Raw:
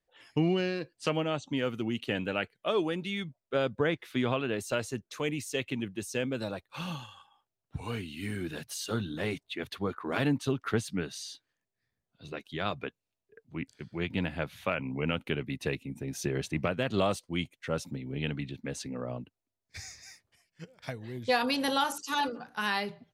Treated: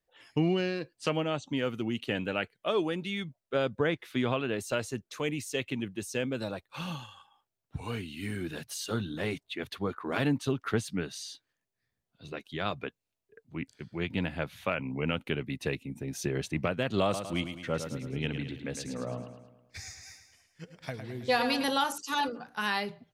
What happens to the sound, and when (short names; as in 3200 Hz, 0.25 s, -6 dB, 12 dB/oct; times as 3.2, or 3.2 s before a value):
17.03–21.64 feedback echo 0.107 s, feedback 51%, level -8.5 dB